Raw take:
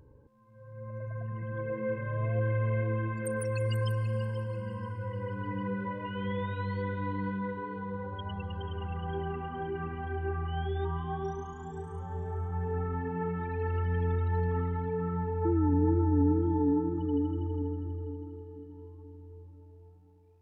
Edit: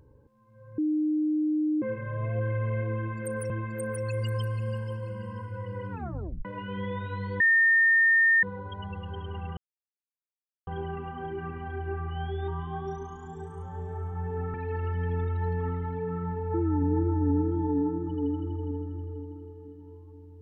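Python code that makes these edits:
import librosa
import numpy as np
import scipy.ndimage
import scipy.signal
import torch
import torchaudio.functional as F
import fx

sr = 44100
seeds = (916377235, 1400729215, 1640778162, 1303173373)

y = fx.edit(x, sr, fx.bleep(start_s=0.78, length_s=1.04, hz=306.0, db=-23.0),
    fx.repeat(start_s=2.97, length_s=0.53, count=2),
    fx.tape_stop(start_s=5.38, length_s=0.54),
    fx.bleep(start_s=6.87, length_s=1.03, hz=1820.0, db=-17.5),
    fx.insert_silence(at_s=9.04, length_s=1.1),
    fx.cut(start_s=12.91, length_s=0.54), tone=tone)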